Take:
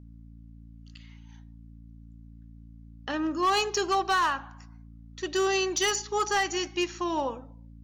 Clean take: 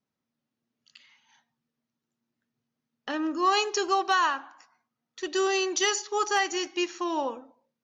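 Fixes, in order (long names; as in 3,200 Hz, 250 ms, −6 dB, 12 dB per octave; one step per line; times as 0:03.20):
clipped peaks rebuilt −19.5 dBFS
hum removal 56.5 Hz, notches 5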